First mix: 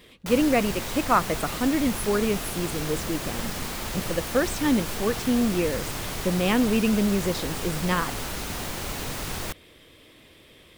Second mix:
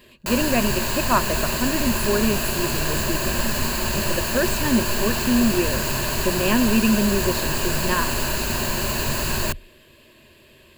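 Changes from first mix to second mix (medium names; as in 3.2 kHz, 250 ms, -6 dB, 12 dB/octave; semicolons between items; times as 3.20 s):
background +6.5 dB; master: add rippled EQ curve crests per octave 1.4, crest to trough 11 dB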